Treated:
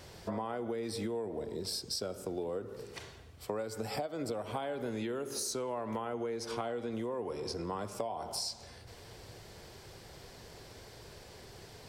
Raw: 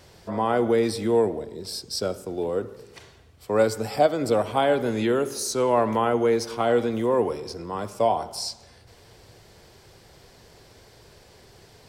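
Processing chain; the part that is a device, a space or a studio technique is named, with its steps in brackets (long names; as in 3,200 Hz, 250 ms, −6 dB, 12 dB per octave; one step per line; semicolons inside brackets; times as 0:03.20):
0:06.05–0:07.92: low-pass filter 12,000 Hz 12 dB per octave
serial compression, leveller first (downward compressor 3 to 1, threshold −24 dBFS, peak gain reduction 8.5 dB; downward compressor 6 to 1, threshold −34 dBFS, peak gain reduction 13 dB)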